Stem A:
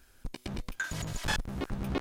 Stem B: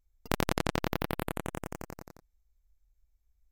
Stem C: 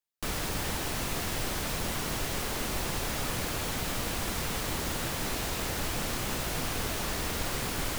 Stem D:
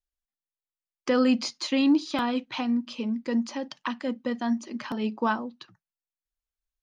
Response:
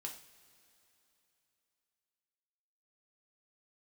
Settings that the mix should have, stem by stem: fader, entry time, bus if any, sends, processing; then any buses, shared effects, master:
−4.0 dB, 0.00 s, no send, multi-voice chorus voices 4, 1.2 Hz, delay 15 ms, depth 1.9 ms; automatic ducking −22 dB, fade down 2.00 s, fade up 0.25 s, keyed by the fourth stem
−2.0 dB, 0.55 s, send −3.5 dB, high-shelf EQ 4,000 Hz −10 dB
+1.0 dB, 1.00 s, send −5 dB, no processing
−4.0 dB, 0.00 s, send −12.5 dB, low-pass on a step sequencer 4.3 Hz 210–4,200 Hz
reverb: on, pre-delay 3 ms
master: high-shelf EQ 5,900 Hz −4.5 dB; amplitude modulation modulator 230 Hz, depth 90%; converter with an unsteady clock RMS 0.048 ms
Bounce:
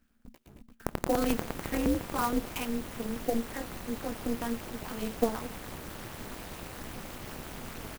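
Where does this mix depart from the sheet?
stem C +1.0 dB → −5.5 dB
reverb return −9.5 dB

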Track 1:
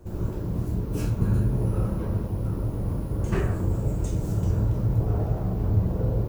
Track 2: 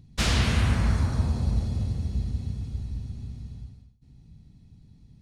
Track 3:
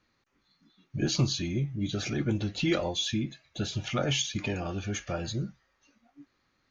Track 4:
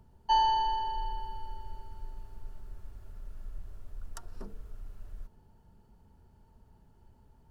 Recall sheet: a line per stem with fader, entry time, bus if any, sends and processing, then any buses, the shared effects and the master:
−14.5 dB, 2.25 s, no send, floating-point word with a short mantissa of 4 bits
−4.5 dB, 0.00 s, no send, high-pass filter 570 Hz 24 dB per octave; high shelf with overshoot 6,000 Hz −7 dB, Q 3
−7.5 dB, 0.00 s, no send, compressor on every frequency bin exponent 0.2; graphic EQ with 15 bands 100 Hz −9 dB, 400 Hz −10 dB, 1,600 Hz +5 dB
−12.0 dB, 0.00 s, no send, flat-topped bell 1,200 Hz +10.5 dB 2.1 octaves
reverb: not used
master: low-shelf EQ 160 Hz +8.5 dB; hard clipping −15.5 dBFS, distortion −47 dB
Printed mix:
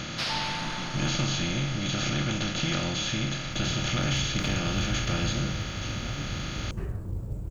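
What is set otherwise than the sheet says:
stem 1: entry 2.25 s → 3.45 s
stem 4: missing flat-topped bell 1,200 Hz +10.5 dB 2.1 octaves

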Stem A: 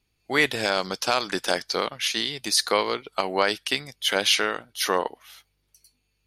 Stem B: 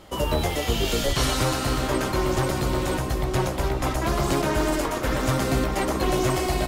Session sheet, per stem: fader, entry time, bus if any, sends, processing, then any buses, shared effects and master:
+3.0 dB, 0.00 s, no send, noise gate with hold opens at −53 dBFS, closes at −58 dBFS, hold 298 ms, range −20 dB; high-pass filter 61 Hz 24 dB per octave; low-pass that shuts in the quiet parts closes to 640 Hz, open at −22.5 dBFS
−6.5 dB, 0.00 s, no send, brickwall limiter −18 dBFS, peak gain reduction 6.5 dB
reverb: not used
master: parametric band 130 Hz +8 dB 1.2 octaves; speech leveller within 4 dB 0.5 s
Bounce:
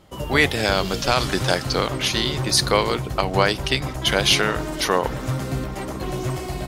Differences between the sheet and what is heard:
stem B: missing brickwall limiter −18 dBFS, peak gain reduction 6.5 dB
master: missing speech leveller within 4 dB 0.5 s

